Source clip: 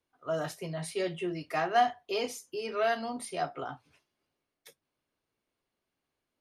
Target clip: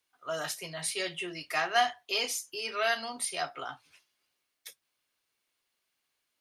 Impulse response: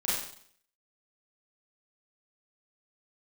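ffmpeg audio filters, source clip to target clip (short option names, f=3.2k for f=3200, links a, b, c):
-af "tiltshelf=f=970:g=-9.5"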